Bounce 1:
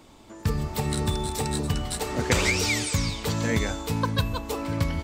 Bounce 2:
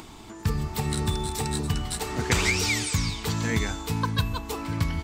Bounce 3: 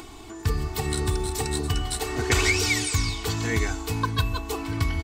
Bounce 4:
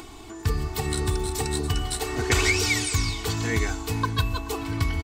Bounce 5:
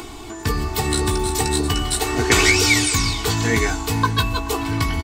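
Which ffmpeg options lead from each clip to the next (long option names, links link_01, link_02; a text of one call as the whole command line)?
ffmpeg -i in.wav -af "equalizer=frequency=260:width_type=o:width=0.27:gain=-4,acompressor=mode=upward:threshold=-35dB:ratio=2.5,equalizer=frequency=550:width_type=o:width=0.27:gain=-14.5" out.wav
ffmpeg -i in.wav -af "aecho=1:1:2.7:0.68" out.wav
ffmpeg -i in.wav -af "aecho=1:1:431:0.0944" out.wav
ffmpeg -i in.wav -filter_complex "[0:a]acrossover=split=160[link_01][link_02];[link_01]asoftclip=type=tanh:threshold=-27dB[link_03];[link_02]asplit=2[link_04][link_05];[link_05]adelay=17,volume=-7dB[link_06];[link_04][link_06]amix=inputs=2:normalize=0[link_07];[link_03][link_07]amix=inputs=2:normalize=0,volume=7dB" out.wav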